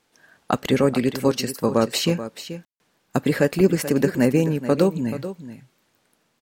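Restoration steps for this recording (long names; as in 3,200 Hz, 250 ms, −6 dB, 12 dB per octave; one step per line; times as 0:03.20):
ambience match 0:02.65–0:02.80
echo removal 432 ms −12.5 dB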